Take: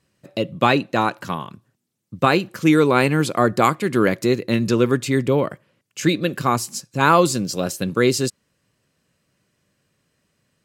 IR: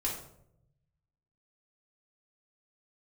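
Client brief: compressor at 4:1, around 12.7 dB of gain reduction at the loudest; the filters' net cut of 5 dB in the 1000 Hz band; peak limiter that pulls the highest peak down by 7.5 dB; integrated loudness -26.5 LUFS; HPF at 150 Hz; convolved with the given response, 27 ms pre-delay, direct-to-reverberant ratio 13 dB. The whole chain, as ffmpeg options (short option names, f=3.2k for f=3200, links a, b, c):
-filter_complex "[0:a]highpass=150,equalizer=f=1k:t=o:g=-6.5,acompressor=threshold=-28dB:ratio=4,alimiter=limit=-21dB:level=0:latency=1,asplit=2[a][b];[1:a]atrim=start_sample=2205,adelay=27[c];[b][c]afir=irnorm=-1:irlink=0,volume=-17dB[d];[a][d]amix=inputs=2:normalize=0,volume=6.5dB"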